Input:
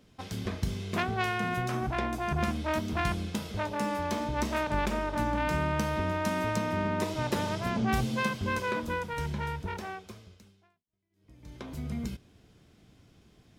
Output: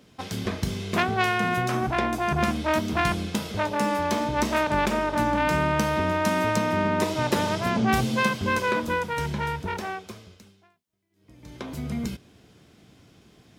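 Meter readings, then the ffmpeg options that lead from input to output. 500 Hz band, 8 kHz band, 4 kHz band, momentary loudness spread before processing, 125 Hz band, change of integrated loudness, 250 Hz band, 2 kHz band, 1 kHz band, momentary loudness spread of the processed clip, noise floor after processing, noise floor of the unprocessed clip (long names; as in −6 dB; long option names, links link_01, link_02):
+6.5 dB, +7.0 dB, +7.0 dB, 8 LU, +3.5 dB, +6.0 dB, +6.0 dB, +7.0 dB, +7.0 dB, 9 LU, −59 dBFS, −65 dBFS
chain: -af "highpass=frequency=130:poles=1,volume=7dB"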